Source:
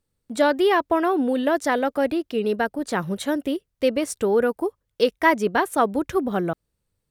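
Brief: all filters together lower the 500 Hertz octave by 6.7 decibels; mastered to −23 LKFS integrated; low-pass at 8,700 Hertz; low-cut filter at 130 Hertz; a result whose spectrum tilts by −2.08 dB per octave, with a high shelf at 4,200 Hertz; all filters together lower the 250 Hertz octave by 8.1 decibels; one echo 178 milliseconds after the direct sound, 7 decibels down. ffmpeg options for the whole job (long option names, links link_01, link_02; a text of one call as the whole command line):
ffmpeg -i in.wav -af "highpass=130,lowpass=8700,equalizer=frequency=250:width_type=o:gain=-8,equalizer=frequency=500:width_type=o:gain=-6,highshelf=frequency=4200:gain=-3,aecho=1:1:178:0.447,volume=3.5dB" out.wav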